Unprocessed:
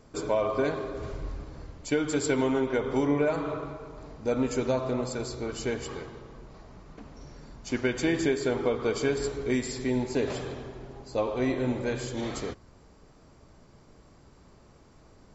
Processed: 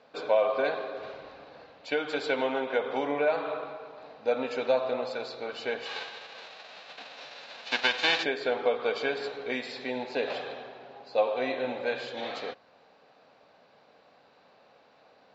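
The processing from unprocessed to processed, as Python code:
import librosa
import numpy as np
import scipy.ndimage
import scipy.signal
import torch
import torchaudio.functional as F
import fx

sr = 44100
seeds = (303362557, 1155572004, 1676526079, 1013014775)

y = fx.envelope_flatten(x, sr, power=0.3, at=(5.85, 8.22), fade=0.02)
y = fx.cabinet(y, sr, low_hz=330.0, low_slope=12, high_hz=4600.0, hz=(350.0, 520.0, 750.0, 1600.0, 2600.0, 3900.0), db=(-9, 7, 9, 6, 8, 9))
y = F.gain(torch.from_numpy(y), -2.5).numpy()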